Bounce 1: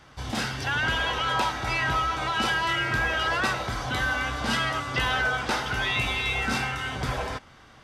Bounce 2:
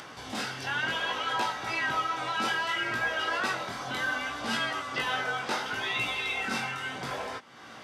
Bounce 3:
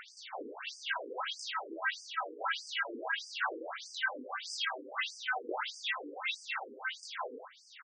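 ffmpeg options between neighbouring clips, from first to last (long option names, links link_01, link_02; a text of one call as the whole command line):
ffmpeg -i in.wav -af "flanger=delay=17:depth=5.7:speed=0.66,acompressor=mode=upward:threshold=-32dB:ratio=2.5,highpass=200,volume=-1dB" out.wav
ffmpeg -i in.wav -af "aecho=1:1:82:0.562,afftfilt=real='re*between(b*sr/1024,350*pow(6700/350,0.5+0.5*sin(2*PI*1.6*pts/sr))/1.41,350*pow(6700/350,0.5+0.5*sin(2*PI*1.6*pts/sr))*1.41)':imag='im*between(b*sr/1024,350*pow(6700/350,0.5+0.5*sin(2*PI*1.6*pts/sr))/1.41,350*pow(6700/350,0.5+0.5*sin(2*PI*1.6*pts/sr))*1.41)':win_size=1024:overlap=0.75" out.wav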